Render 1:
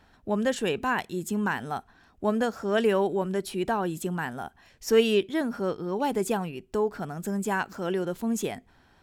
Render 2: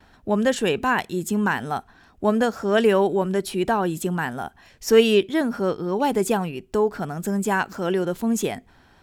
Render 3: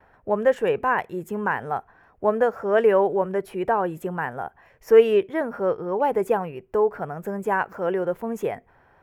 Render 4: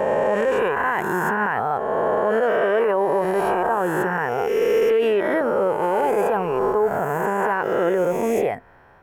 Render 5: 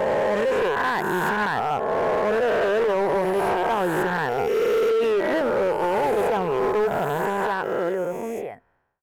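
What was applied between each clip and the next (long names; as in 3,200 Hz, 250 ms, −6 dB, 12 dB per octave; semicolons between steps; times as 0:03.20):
noise gate with hold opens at −54 dBFS; level +5.5 dB
octave-band graphic EQ 125/250/500/1,000/2,000/4,000/8,000 Hz +5/−5/+11/+6/+7/−12/−9 dB; level −8 dB
peak hold with a rise ahead of every peak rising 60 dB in 2.04 s; brickwall limiter −15 dBFS, peak gain reduction 11.5 dB; level +3 dB
fade-out on the ending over 1.96 s; hard clipping −18 dBFS, distortion −13 dB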